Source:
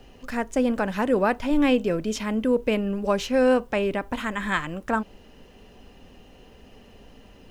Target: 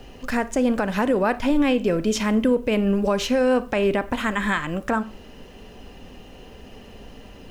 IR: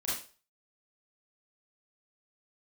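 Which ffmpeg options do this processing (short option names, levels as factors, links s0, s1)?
-filter_complex "[0:a]alimiter=limit=0.126:level=0:latency=1:release=197,asplit=2[s0][s1];[1:a]atrim=start_sample=2205[s2];[s1][s2]afir=irnorm=-1:irlink=0,volume=0.112[s3];[s0][s3]amix=inputs=2:normalize=0,volume=2"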